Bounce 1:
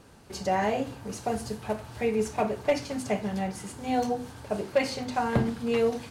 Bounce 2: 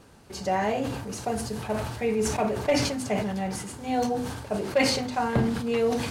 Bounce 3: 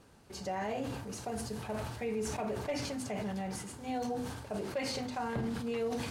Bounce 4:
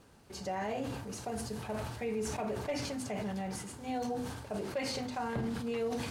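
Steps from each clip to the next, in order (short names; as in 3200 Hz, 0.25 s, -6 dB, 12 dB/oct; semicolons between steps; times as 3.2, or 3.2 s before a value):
sustainer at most 45 dB/s
limiter -20.5 dBFS, peak gain reduction 10.5 dB; gain -7 dB
crackle 300/s -61 dBFS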